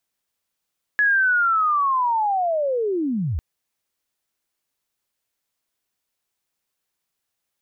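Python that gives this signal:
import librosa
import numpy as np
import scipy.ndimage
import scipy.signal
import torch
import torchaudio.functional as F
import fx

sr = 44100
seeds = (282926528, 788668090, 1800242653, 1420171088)

y = fx.chirp(sr, length_s=2.4, from_hz=1700.0, to_hz=62.0, law='linear', from_db=-14.5, to_db=-21.0)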